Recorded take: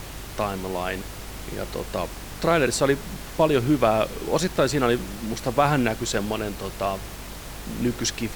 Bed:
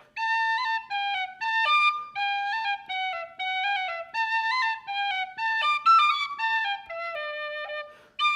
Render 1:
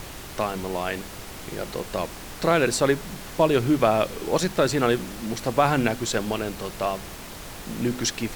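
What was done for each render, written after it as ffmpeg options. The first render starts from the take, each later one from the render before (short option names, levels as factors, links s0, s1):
-af "bandreject=f=50:t=h:w=4,bandreject=f=100:t=h:w=4,bandreject=f=150:t=h:w=4,bandreject=f=200:t=h:w=4,bandreject=f=250:t=h:w=4"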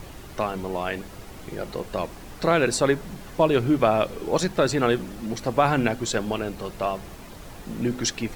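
-af "afftdn=nr=8:nf=-39"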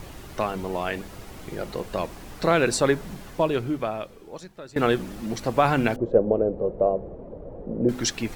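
-filter_complex "[0:a]asettb=1/sr,asplit=3[s0][s1][s2];[s0]atrim=end=5.964[s3];[s1]atrim=start=5.96:end=7.89,asetpts=PTS-STARTPTS,afade=t=in:d=0.004:c=qsin,afade=t=out:st=1.926:d=0.004:c=qsin,lowpass=f=520:t=q:w=4.1[s4];[s2]atrim=start=7.886[s5];[s3][s4]acrossfade=d=0.004:c1=hsin:c2=qsin[s6];[s6][s5]acrossfade=d=0.004:c1=qsin:c2=hsin,asplit=2[s7][s8];[s7]atrim=end=4.76,asetpts=PTS-STARTPTS,afade=t=out:st=3.15:d=1.61:c=qua:silence=0.0944061[s9];[s8]atrim=start=4.76,asetpts=PTS-STARTPTS,afade=t=in:d=0.004:c=hsin:silence=0.0944061[s10];[s9][s10]concat=n=2:v=0:a=1"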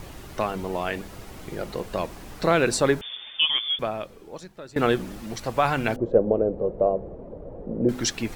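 -filter_complex "[0:a]asettb=1/sr,asplit=3[s0][s1][s2];[s0]atrim=end=3.014[s3];[s1]atrim=start=3.01:end=3.79,asetpts=PTS-STARTPTS,afade=t=in:d=0.004:c=qsin,afade=t=out:st=0.776:d=0.004:c=qsin,lowpass=f=3100:t=q:w=0.5098,lowpass=f=3100:t=q:w=0.6013,lowpass=f=3100:t=q:w=0.9,lowpass=f=3100:t=q:w=2.563,afreqshift=-3600[s4];[s2]atrim=start=3.786[s5];[s3][s4]acrossfade=d=0.004:c1=hsin:c2=qsin[s6];[s6][s5]acrossfade=d=0.004:c1=qsin:c2=hsin,asettb=1/sr,asplit=3[s7][s8][s9];[s7]atrim=end=5.184[s10];[s8]atrim=start=5.18:end=5.88,asetpts=PTS-STARTPTS,afade=t=in:d=0.004:c=qsin,afade=t=out:st=0.696:d=0.004:c=qsin,equalizer=f=260:t=o:w=2.1:g=-6[s11];[s9]atrim=start=5.876[s12];[s10][s11]acrossfade=d=0.004:c1=hsin:c2=qsin[s13];[s13][s12]acrossfade=d=0.004:c1=qsin:c2=hsin"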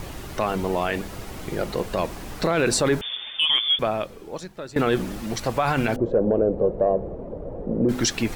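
-af "acontrast=33,alimiter=limit=0.251:level=0:latency=1:release=26"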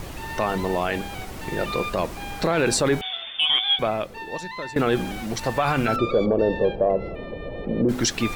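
-filter_complex "[1:a]volume=0.316[s0];[0:a][s0]amix=inputs=2:normalize=0"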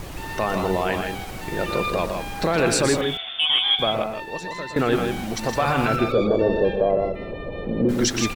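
-af "aecho=1:1:119.5|160.3:0.355|0.501"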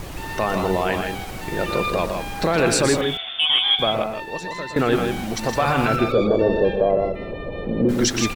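-af "volume=1.19"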